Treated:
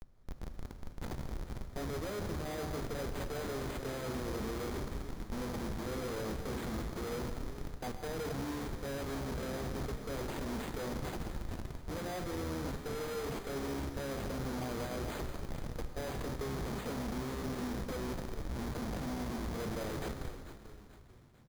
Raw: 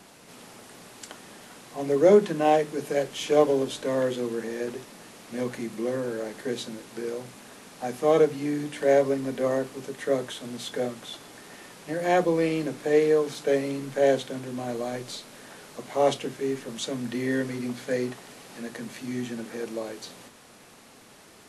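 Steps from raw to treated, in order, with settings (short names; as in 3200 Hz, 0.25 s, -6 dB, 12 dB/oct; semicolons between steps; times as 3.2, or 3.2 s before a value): octaver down 2 oct, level -5 dB; HPF 45 Hz 6 dB/oct; notches 50/100 Hz; reverse; compressor 16:1, threshold -30 dBFS, peak gain reduction 19 dB; reverse; Chebyshev band-stop 1000–3200 Hz, order 3; Schmitt trigger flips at -39.5 dBFS; frequency-shifting echo 0.441 s, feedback 48%, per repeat -63 Hz, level -12 dB; non-linear reverb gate 0.29 s flat, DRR 6.5 dB; careless resampling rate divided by 8×, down filtered, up hold; gain -1.5 dB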